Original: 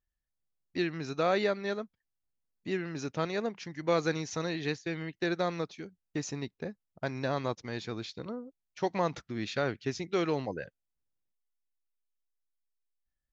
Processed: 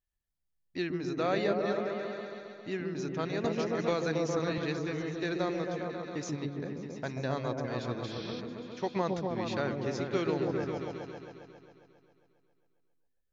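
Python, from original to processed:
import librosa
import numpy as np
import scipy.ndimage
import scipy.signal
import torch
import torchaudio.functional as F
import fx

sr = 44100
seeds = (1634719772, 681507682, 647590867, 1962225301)

y = fx.spec_repair(x, sr, seeds[0], start_s=8.09, length_s=0.29, low_hz=1500.0, high_hz=6100.0, source='before')
y = fx.echo_opening(y, sr, ms=135, hz=400, octaves=1, feedback_pct=70, wet_db=0)
y = fx.band_squash(y, sr, depth_pct=100, at=(3.44, 4.58))
y = F.gain(torch.from_numpy(y), -3.0).numpy()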